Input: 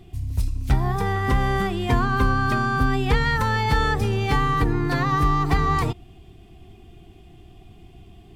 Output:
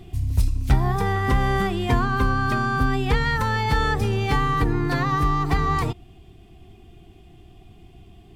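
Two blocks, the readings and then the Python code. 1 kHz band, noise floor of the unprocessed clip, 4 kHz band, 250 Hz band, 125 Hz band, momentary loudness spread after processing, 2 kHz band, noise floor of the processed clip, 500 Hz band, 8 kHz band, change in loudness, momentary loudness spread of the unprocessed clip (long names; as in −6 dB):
−0.5 dB, −48 dBFS, −0.5 dB, −0.5 dB, 0.0 dB, 3 LU, −0.5 dB, −49 dBFS, 0.0 dB, 0.0 dB, 0.0 dB, 4 LU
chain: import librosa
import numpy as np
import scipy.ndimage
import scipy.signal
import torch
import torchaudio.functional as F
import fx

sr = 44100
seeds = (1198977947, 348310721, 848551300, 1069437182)

y = fx.rider(x, sr, range_db=4, speed_s=0.5)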